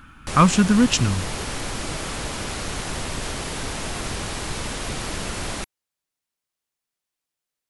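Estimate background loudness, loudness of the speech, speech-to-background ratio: -29.0 LUFS, -19.0 LUFS, 10.0 dB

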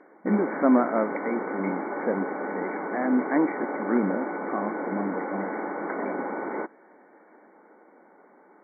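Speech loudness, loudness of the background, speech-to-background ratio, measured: -28.5 LUFS, -32.0 LUFS, 3.5 dB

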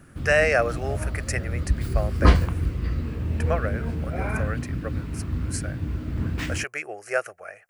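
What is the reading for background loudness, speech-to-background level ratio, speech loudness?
-27.5 LUFS, -0.5 dB, -28.0 LUFS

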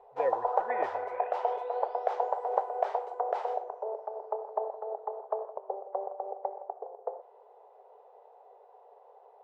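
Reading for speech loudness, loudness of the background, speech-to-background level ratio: -37.5 LUFS, -34.0 LUFS, -3.5 dB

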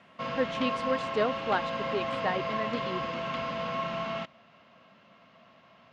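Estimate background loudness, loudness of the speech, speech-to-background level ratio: -33.0 LUFS, -33.0 LUFS, 0.0 dB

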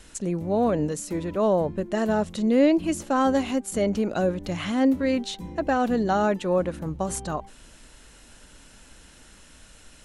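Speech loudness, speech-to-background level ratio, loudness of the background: -25.0 LUFS, 16.5 dB, -41.5 LUFS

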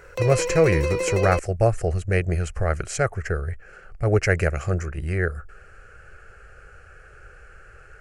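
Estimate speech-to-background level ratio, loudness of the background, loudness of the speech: 3.0 dB, -26.5 LUFS, -23.5 LUFS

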